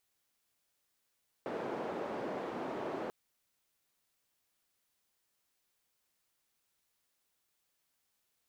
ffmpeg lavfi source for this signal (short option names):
-f lavfi -i "anoisesrc=c=white:d=1.64:r=44100:seed=1,highpass=f=280,lowpass=f=580,volume=-16.3dB"